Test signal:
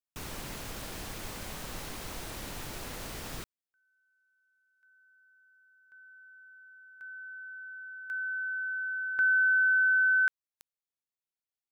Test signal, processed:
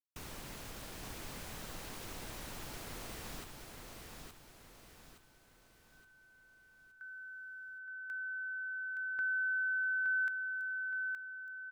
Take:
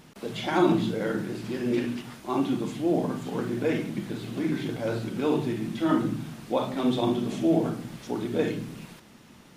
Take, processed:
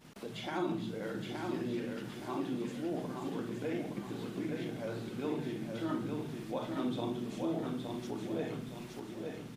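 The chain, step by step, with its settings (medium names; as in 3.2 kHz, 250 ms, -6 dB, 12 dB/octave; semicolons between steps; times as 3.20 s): gate -53 dBFS, range -14 dB; compression 1.5:1, threshold -56 dBFS; on a send: feedback delay 869 ms, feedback 43%, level -4.5 dB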